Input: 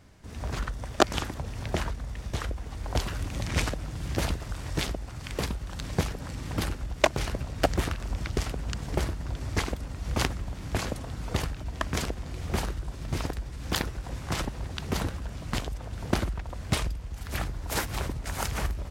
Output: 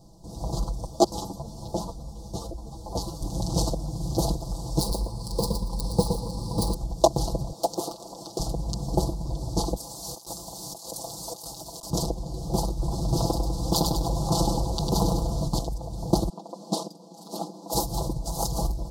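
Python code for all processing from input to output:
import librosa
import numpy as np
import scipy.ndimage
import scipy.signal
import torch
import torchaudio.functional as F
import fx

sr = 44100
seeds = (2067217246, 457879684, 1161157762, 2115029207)

y = fx.chain(x, sr, fx.hum_notches(base_hz=60, count=3),
    fx.ensemble(), at=(0.86, 3.22))
y = fx.chain(y, sr, fx.self_delay(depth_ms=0.33),
    fx.ripple_eq(per_octave=0.91, db=8),
    fx.echo_feedback(ms=116, feedback_pct=16, wet_db=-6.0), at=(4.8, 6.74))
y = fx.chain(y, sr, fx.highpass(hz=380.0, slope=12),
    fx.clip_hard(threshold_db=-21.5), at=(7.52, 8.4))
y = fx.chain(y, sr, fx.highpass(hz=980.0, slope=6),
    fx.high_shelf(hz=6200.0, db=11.5),
    fx.over_compress(threshold_db=-42.0, ratio=-1.0), at=(9.77, 11.9))
y = fx.chain(y, sr, fx.peak_eq(hz=1600.0, db=4.0, octaves=1.6),
    fx.echo_feedback(ms=100, feedback_pct=41, wet_db=-6.5),
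    fx.env_flatten(amount_pct=50), at=(12.79, 15.48))
y = fx.chain(y, sr, fx.brickwall_highpass(low_hz=170.0),
    fx.high_shelf(hz=9200.0, db=-11.0), at=(16.29, 17.73))
y = scipy.signal.sosfilt(scipy.signal.ellip(3, 1.0, 80, [850.0, 4300.0], 'bandstop', fs=sr, output='sos'), y)
y = fx.peak_eq(y, sr, hz=1300.0, db=6.0, octaves=1.0)
y = y + 0.82 * np.pad(y, (int(6.0 * sr / 1000.0), 0))[:len(y)]
y = F.gain(torch.from_numpy(y), 3.0).numpy()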